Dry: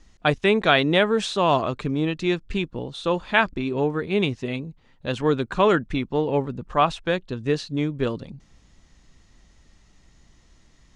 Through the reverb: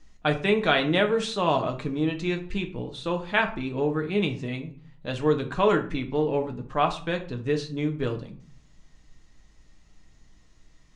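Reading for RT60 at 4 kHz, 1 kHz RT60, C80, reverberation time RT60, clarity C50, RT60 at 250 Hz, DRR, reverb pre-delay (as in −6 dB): 0.30 s, 0.45 s, 17.5 dB, 0.45 s, 12.0 dB, 0.65 s, 3.5 dB, 4 ms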